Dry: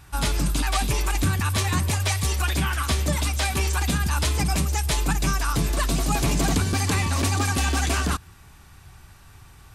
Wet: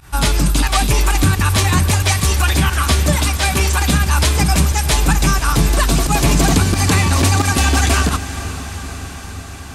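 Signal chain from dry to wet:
fake sidechain pumping 89 BPM, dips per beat 1, −16 dB, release 75 ms
feedback delay with all-pass diffusion 472 ms, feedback 71%, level −13.5 dB
level +8.5 dB

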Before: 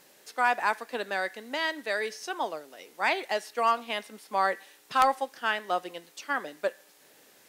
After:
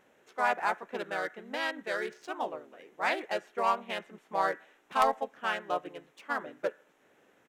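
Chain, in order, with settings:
adaptive Wiener filter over 9 samples
pitch-shifted copies added −3 semitones −3 dB
level −4.5 dB

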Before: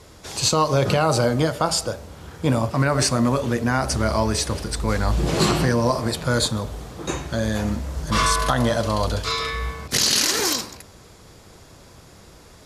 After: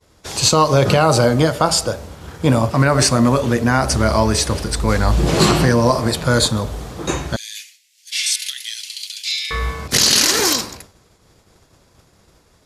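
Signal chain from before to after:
0:07.36–0:09.51: Butterworth high-pass 2,200 Hz 48 dB per octave
downward expander −37 dBFS
level +5.5 dB

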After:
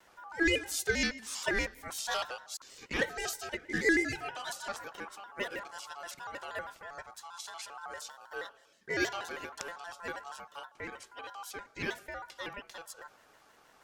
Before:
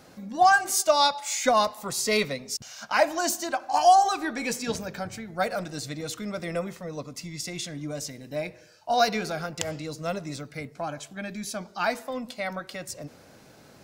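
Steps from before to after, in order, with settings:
ring modulation 1,100 Hz
pitch modulation by a square or saw wave square 6.3 Hz, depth 160 cents
level −7 dB

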